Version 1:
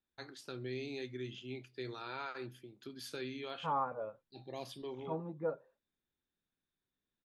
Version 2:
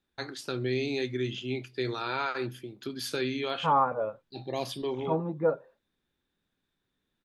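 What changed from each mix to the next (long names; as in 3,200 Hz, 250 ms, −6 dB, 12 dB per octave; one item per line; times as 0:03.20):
first voice +11.5 dB
second voice +10.5 dB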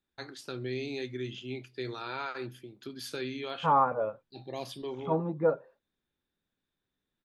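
first voice −5.5 dB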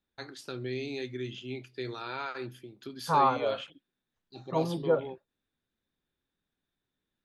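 second voice: entry −0.55 s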